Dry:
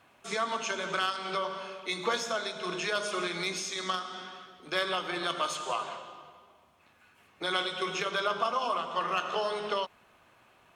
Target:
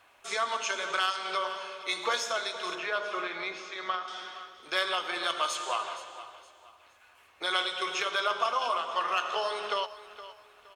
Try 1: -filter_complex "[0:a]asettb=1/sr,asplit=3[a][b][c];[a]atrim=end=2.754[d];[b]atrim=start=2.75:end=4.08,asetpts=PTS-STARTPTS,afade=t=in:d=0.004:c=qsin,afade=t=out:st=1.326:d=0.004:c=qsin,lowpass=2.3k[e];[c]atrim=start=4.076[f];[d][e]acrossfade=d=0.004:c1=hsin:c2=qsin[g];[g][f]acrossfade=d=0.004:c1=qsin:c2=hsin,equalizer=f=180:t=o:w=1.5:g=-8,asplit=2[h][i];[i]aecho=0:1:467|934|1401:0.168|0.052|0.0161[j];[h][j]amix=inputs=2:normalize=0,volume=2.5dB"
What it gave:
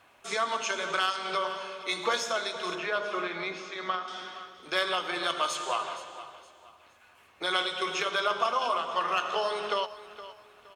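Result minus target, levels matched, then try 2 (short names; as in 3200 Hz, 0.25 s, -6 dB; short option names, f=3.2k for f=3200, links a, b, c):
250 Hz band +4.0 dB
-filter_complex "[0:a]asettb=1/sr,asplit=3[a][b][c];[a]atrim=end=2.754[d];[b]atrim=start=2.75:end=4.08,asetpts=PTS-STARTPTS,afade=t=in:d=0.004:c=qsin,afade=t=out:st=1.326:d=0.004:c=qsin,lowpass=2.3k[e];[c]atrim=start=4.076[f];[d][e]acrossfade=d=0.004:c1=hsin:c2=qsin[g];[g][f]acrossfade=d=0.004:c1=qsin:c2=hsin,equalizer=f=180:t=o:w=1.5:g=-19,asplit=2[h][i];[i]aecho=0:1:467|934|1401:0.168|0.052|0.0161[j];[h][j]amix=inputs=2:normalize=0,volume=2.5dB"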